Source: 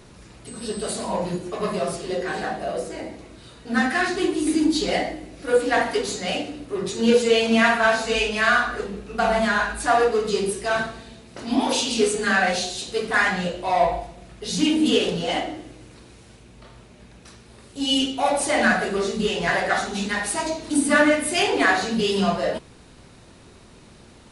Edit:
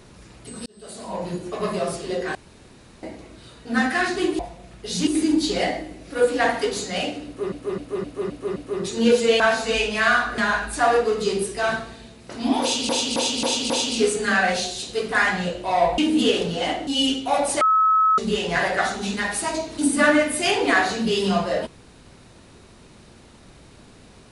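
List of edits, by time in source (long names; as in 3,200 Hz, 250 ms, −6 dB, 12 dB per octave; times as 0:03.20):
0:00.66–0:01.49: fade in
0:02.35–0:03.03: fill with room tone
0:06.58–0:06.84: repeat, 6 plays
0:07.42–0:07.81: remove
0:08.79–0:09.45: remove
0:11.69–0:11.96: repeat, 5 plays
0:13.97–0:14.65: move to 0:04.39
0:15.54–0:17.79: remove
0:18.53–0:19.10: beep over 1,290 Hz −14 dBFS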